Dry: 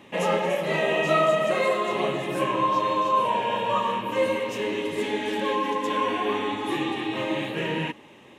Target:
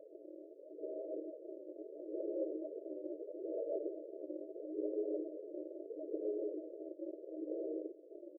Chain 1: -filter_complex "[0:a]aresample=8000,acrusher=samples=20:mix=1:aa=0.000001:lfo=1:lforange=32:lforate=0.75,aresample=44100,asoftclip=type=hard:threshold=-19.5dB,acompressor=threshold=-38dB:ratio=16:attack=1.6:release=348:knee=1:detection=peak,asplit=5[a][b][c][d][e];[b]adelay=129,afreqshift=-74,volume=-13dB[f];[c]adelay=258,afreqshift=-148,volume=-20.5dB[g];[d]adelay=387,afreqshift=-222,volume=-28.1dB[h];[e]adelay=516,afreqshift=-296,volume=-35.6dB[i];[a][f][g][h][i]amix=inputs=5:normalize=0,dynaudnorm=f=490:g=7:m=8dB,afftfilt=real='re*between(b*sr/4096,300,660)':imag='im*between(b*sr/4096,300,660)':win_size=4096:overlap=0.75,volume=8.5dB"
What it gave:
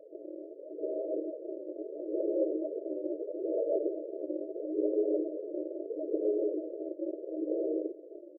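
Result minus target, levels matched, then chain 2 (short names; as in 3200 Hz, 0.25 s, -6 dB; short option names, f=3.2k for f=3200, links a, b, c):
compressor: peak gain reduction -9 dB
-filter_complex "[0:a]aresample=8000,acrusher=samples=20:mix=1:aa=0.000001:lfo=1:lforange=32:lforate=0.75,aresample=44100,asoftclip=type=hard:threshold=-19.5dB,acompressor=threshold=-47.5dB:ratio=16:attack=1.6:release=348:knee=1:detection=peak,asplit=5[a][b][c][d][e];[b]adelay=129,afreqshift=-74,volume=-13dB[f];[c]adelay=258,afreqshift=-148,volume=-20.5dB[g];[d]adelay=387,afreqshift=-222,volume=-28.1dB[h];[e]adelay=516,afreqshift=-296,volume=-35.6dB[i];[a][f][g][h][i]amix=inputs=5:normalize=0,dynaudnorm=f=490:g=7:m=8dB,afftfilt=real='re*between(b*sr/4096,300,660)':imag='im*between(b*sr/4096,300,660)':win_size=4096:overlap=0.75,volume=8.5dB"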